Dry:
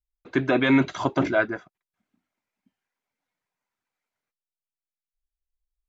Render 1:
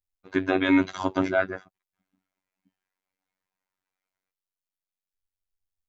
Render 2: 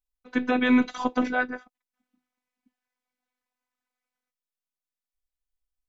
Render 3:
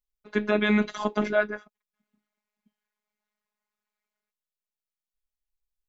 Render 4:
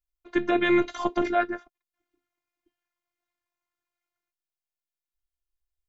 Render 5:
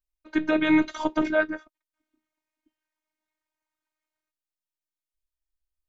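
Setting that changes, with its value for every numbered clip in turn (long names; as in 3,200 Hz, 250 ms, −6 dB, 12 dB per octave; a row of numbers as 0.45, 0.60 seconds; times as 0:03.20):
phases set to zero, frequency: 94, 250, 210, 350, 310 Hertz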